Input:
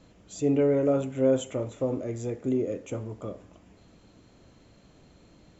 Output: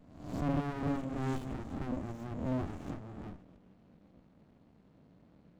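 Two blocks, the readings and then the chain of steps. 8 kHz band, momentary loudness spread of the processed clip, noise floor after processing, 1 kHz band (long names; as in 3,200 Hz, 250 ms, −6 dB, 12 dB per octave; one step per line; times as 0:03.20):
can't be measured, 12 LU, −63 dBFS, +0.5 dB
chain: peak hold with a rise ahead of every peak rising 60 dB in 0.78 s
low-pass that shuts in the quiet parts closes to 2,700 Hz, open at −23 dBFS
high-pass filter 140 Hz 24 dB per octave
parametric band 210 Hz +6.5 dB 2.1 octaves
windowed peak hold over 65 samples
level −9 dB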